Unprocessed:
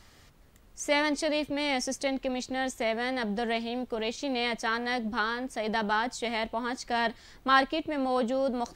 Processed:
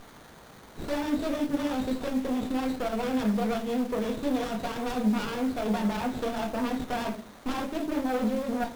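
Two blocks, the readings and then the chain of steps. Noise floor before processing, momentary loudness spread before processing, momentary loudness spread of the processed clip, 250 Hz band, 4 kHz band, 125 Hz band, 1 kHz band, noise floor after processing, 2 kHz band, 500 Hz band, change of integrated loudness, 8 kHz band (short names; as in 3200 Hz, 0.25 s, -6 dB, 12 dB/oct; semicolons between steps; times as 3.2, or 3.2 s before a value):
-57 dBFS, 7 LU, 5 LU, +5.0 dB, -6.5 dB, +8.5 dB, -3.5 dB, -50 dBFS, -8.5 dB, -1.0 dB, 0.0 dB, -5.5 dB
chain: nonlinear frequency compression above 3300 Hz 4:1; reverb removal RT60 0.68 s; HPF 170 Hz 12 dB/oct; low shelf 220 Hz +9.5 dB; sample leveller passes 1; compressor 12:1, threshold -27 dBFS, peak gain reduction 12 dB; requantised 8-bit, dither triangular; wavefolder -26 dBFS; vibrato 12 Hz 41 cents; shoebox room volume 330 m³, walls furnished, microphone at 1.8 m; running maximum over 17 samples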